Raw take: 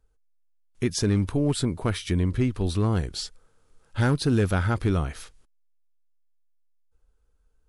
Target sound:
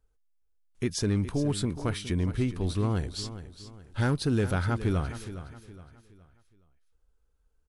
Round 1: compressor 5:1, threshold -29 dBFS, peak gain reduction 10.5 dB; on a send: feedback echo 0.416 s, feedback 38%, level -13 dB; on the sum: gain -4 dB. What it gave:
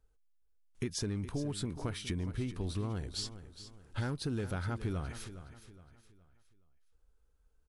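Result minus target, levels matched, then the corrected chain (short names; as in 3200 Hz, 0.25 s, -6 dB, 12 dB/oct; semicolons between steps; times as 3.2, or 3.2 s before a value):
compressor: peak gain reduction +10.5 dB
on a send: feedback echo 0.416 s, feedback 38%, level -13 dB; on the sum: gain -4 dB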